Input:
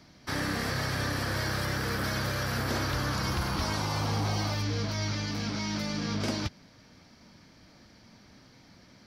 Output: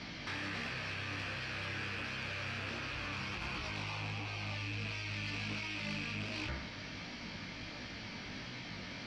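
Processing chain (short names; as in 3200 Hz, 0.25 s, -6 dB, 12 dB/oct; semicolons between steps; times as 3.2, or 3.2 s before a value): rattling part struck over -35 dBFS, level -26 dBFS; bell 2700 Hz +11 dB 1.3 oct; de-hum 67.01 Hz, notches 33; negative-ratio compressor -37 dBFS, ratio -1; chorus 1.4 Hz, delay 16.5 ms, depth 4.8 ms; soft clip -34.5 dBFS, distortion -16 dB; air absorption 92 m; gain +2.5 dB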